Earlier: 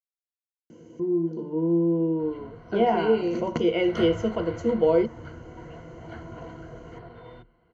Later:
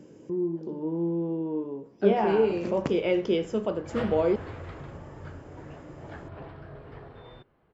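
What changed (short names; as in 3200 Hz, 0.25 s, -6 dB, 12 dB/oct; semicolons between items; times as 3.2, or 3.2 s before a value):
speech: entry -0.70 s; master: remove ripple EQ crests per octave 1.9, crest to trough 13 dB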